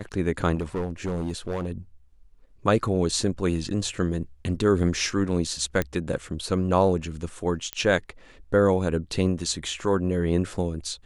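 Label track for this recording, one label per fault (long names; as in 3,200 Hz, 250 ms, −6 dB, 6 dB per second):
0.560000	1.690000	clipping −23.5 dBFS
5.820000	5.820000	click −11 dBFS
7.730000	7.730000	click −12 dBFS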